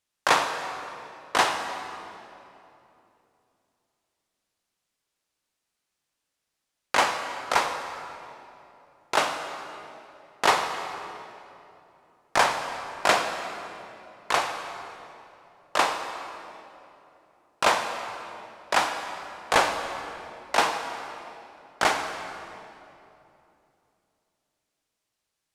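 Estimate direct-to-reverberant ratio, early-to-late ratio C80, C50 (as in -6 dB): 6.0 dB, 7.0 dB, 6.0 dB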